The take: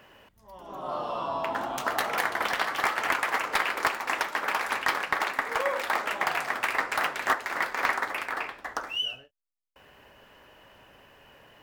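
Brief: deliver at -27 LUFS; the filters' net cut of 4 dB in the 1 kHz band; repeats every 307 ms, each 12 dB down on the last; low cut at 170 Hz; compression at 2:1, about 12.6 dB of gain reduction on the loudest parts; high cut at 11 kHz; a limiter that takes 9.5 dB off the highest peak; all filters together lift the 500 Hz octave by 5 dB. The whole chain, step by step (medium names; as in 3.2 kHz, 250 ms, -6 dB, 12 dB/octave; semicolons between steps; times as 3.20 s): high-pass 170 Hz; low-pass 11 kHz; peaking EQ 500 Hz +9 dB; peaking EQ 1 kHz -8 dB; compression 2:1, threshold -44 dBFS; peak limiter -31.5 dBFS; feedback delay 307 ms, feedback 25%, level -12 dB; trim +15 dB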